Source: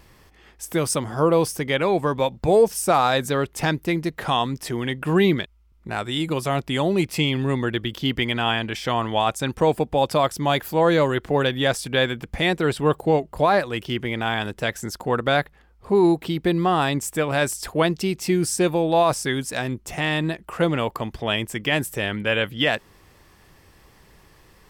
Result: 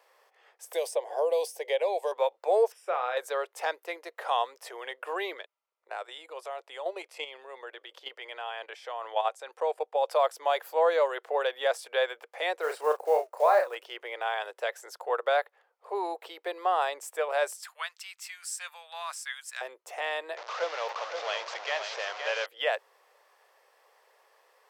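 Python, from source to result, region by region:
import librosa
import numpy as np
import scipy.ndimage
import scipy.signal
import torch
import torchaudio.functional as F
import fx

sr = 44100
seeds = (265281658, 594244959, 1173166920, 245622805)

y = fx.chain(x, sr, fx.fixed_phaser(hz=540.0, stages=4),
    fx.band_squash(depth_pct=100), at=(0.73, 2.12))
y = fx.chain(y, sr, fx.savgol(points=25),
    fx.peak_eq(hz=810.0, db=-10.0, octaves=1.3),
    fx.doubler(ms=32.0, db=-8.0), at=(2.72, 3.17))
y = fx.chain(y, sr, fx.lowpass(hz=11000.0, slope=12),
    fx.level_steps(step_db=10), at=(5.37, 10.08))
y = fx.chain(y, sr, fx.block_float(bits=5),
    fx.peak_eq(hz=3400.0, db=-7.5, octaves=0.5),
    fx.doubler(ms=33.0, db=-6), at=(12.61, 13.76))
y = fx.chain(y, sr, fx.highpass(hz=1300.0, slope=24),
    fx.peak_eq(hz=7600.0, db=5.0, octaves=0.22), at=(17.61, 19.61))
y = fx.chain(y, sr, fx.delta_mod(bps=32000, step_db=-21.0),
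    fx.low_shelf(hz=490.0, db=-9.5),
    fx.echo_single(ms=520, db=-6.5), at=(20.37, 22.46))
y = scipy.signal.sosfilt(scipy.signal.butter(8, 480.0, 'highpass', fs=sr, output='sos'), y)
y = fx.tilt_shelf(y, sr, db=5.5, hz=1400.0)
y = y * 10.0 ** (-7.0 / 20.0)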